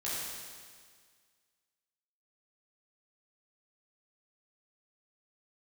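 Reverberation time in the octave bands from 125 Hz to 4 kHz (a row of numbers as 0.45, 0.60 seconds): 1.8, 1.8, 1.8, 1.8, 1.8, 1.8 seconds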